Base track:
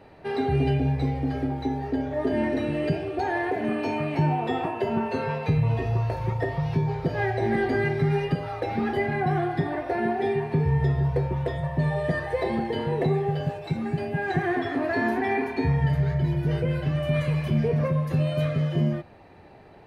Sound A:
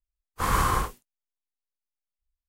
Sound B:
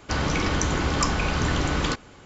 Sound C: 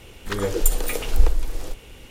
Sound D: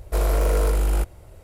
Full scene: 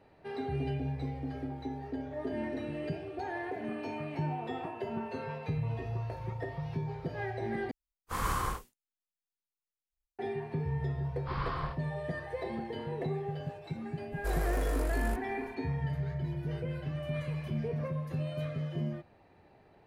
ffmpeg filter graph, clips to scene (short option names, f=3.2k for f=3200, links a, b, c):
-filter_complex "[1:a]asplit=2[a][b];[0:a]volume=-11dB[c];[b]aresample=11025,aresample=44100[d];[c]asplit=2[e][f];[e]atrim=end=7.714[g];[a]atrim=end=2.48,asetpts=PTS-STARTPTS,volume=-8.5dB[h];[f]atrim=start=10.186[i];[d]atrim=end=2.48,asetpts=PTS-STARTPTS,volume=-12.5dB,afade=t=in:d=0.004:c=hsin,afade=t=out:st=2.476:d=0.004:c=hsin,adelay=10870[j];[4:a]atrim=end=1.43,asetpts=PTS-STARTPTS,volume=-11.5dB,afade=t=in:d=0.004:c=hsin,afade=t=out:st=1.426:d=0.004:c=hsin,adelay=622692S[k];[g][h]acrossfade=d=0.004:c1=hsin:c2=hsin[l];[l][i]acrossfade=d=0.004:c1=hsin:c2=hsin[m];[m][j][k]amix=inputs=3:normalize=0"